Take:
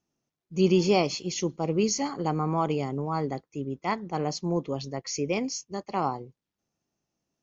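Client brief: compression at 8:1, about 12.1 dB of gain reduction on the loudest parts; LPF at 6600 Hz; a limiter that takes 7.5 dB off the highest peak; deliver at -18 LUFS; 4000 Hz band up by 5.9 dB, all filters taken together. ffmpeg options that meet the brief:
-af "lowpass=6.6k,equalizer=f=4k:t=o:g=8.5,acompressor=threshold=-29dB:ratio=8,volume=19dB,alimiter=limit=-7.5dB:level=0:latency=1"

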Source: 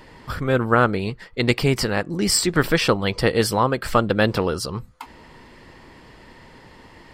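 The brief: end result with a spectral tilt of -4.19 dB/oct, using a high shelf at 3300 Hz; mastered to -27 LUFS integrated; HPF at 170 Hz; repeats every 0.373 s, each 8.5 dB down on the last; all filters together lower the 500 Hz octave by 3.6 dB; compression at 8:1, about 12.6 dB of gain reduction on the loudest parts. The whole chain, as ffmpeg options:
-af "highpass=170,equalizer=f=500:t=o:g=-4,highshelf=f=3.3k:g=-5.5,acompressor=threshold=-28dB:ratio=8,aecho=1:1:373|746|1119|1492:0.376|0.143|0.0543|0.0206,volume=6dB"

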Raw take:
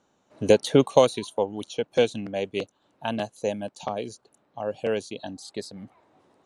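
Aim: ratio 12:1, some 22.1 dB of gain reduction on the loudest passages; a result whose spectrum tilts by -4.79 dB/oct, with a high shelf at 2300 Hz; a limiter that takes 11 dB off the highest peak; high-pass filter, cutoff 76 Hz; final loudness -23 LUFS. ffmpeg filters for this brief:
-af "highpass=76,highshelf=f=2.3k:g=-3,acompressor=threshold=-34dB:ratio=12,volume=20dB,alimiter=limit=-9dB:level=0:latency=1"

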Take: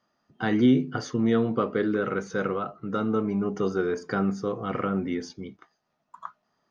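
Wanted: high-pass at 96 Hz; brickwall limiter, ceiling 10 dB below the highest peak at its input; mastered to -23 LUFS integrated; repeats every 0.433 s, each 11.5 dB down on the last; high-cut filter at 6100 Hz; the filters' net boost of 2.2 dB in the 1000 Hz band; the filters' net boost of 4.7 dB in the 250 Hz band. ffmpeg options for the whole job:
-af "highpass=96,lowpass=6.1k,equalizer=f=250:t=o:g=5.5,equalizer=f=1k:t=o:g=3,alimiter=limit=-16dB:level=0:latency=1,aecho=1:1:433|866|1299:0.266|0.0718|0.0194,volume=3dB"

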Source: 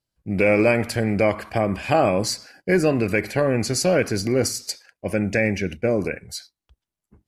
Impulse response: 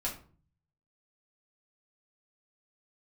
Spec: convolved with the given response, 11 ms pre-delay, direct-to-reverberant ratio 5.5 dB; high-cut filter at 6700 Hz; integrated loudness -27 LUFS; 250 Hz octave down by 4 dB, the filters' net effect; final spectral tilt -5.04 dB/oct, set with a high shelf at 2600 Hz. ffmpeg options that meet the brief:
-filter_complex "[0:a]lowpass=6.7k,equalizer=f=250:t=o:g=-5.5,highshelf=f=2.6k:g=-3.5,asplit=2[a][b];[1:a]atrim=start_sample=2205,adelay=11[c];[b][c]afir=irnorm=-1:irlink=0,volume=-9dB[d];[a][d]amix=inputs=2:normalize=0,volume=-4.5dB"

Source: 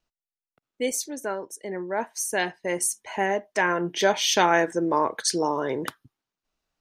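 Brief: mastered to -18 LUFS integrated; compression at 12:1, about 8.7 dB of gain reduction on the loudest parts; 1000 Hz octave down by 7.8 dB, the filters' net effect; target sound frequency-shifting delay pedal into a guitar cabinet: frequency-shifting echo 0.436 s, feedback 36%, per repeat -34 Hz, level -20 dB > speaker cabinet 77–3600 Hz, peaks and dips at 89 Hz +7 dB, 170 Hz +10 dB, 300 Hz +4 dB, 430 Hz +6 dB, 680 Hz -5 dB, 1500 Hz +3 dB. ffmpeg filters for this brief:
-filter_complex "[0:a]equalizer=f=1k:t=o:g=-9,acompressor=threshold=-27dB:ratio=12,asplit=4[a][b][c][d];[b]adelay=436,afreqshift=-34,volume=-20dB[e];[c]adelay=872,afreqshift=-68,volume=-28.9dB[f];[d]adelay=1308,afreqshift=-102,volume=-37.7dB[g];[a][e][f][g]amix=inputs=4:normalize=0,highpass=77,equalizer=f=89:t=q:w=4:g=7,equalizer=f=170:t=q:w=4:g=10,equalizer=f=300:t=q:w=4:g=4,equalizer=f=430:t=q:w=4:g=6,equalizer=f=680:t=q:w=4:g=-5,equalizer=f=1.5k:t=q:w=4:g=3,lowpass=f=3.6k:w=0.5412,lowpass=f=3.6k:w=1.3066,volume=13.5dB"

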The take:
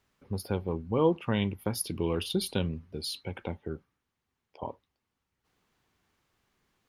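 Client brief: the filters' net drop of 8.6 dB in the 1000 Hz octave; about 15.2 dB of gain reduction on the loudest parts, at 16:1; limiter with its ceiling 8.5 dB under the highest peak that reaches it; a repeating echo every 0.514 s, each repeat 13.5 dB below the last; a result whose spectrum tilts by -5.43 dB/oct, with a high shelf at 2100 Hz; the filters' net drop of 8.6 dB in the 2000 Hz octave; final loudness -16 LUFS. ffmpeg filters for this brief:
-af "equalizer=f=1k:t=o:g=-8,equalizer=f=2k:t=o:g=-6,highshelf=f=2.1k:g=-5,acompressor=threshold=-35dB:ratio=16,alimiter=level_in=7.5dB:limit=-24dB:level=0:latency=1,volume=-7.5dB,aecho=1:1:514|1028:0.211|0.0444,volume=28dB"

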